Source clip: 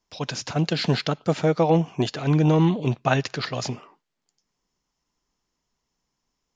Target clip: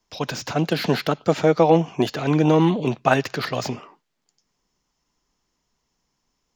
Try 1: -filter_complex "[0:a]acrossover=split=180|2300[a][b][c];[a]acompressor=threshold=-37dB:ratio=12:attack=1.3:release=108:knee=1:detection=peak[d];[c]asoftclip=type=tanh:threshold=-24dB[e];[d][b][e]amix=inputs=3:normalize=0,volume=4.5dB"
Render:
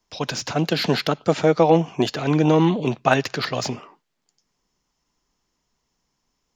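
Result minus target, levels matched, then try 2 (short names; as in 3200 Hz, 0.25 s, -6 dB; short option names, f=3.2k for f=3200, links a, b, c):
soft clip: distortion -8 dB
-filter_complex "[0:a]acrossover=split=180|2300[a][b][c];[a]acompressor=threshold=-37dB:ratio=12:attack=1.3:release=108:knee=1:detection=peak[d];[c]asoftclip=type=tanh:threshold=-34dB[e];[d][b][e]amix=inputs=3:normalize=0,volume=4.5dB"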